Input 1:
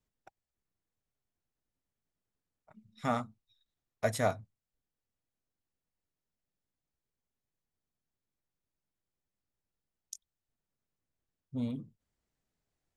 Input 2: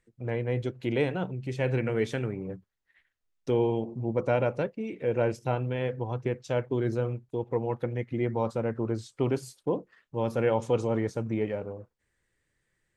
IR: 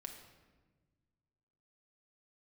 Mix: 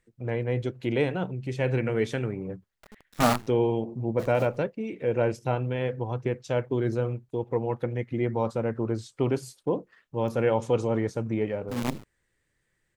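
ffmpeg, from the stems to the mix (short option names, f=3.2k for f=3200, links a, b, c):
-filter_complex "[0:a]highshelf=f=2.2k:g=-9,dynaudnorm=f=590:g=3:m=8.5dB,acrusher=bits=5:dc=4:mix=0:aa=0.000001,adelay=150,volume=1.5dB[a];[1:a]volume=1.5dB,asplit=2[b][c];[c]apad=whole_len=578516[d];[a][d]sidechaincompress=threshold=-43dB:ratio=12:attack=12:release=114[e];[e][b]amix=inputs=2:normalize=0"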